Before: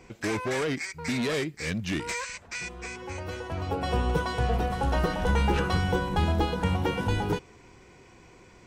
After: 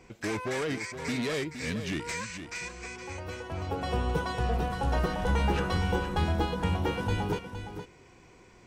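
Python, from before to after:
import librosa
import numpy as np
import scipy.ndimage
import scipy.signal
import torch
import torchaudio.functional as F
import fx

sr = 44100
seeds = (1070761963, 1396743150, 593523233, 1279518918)

y = x + 10.0 ** (-9.5 / 20.0) * np.pad(x, (int(465 * sr / 1000.0), 0))[:len(x)]
y = F.gain(torch.from_numpy(y), -3.0).numpy()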